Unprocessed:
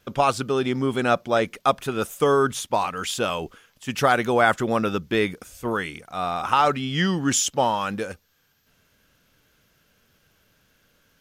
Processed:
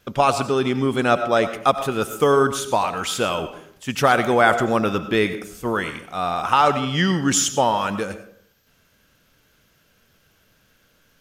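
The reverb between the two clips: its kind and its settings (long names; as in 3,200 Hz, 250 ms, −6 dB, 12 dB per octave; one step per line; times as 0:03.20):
comb and all-pass reverb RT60 0.63 s, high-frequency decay 0.5×, pre-delay 55 ms, DRR 10.5 dB
level +2.5 dB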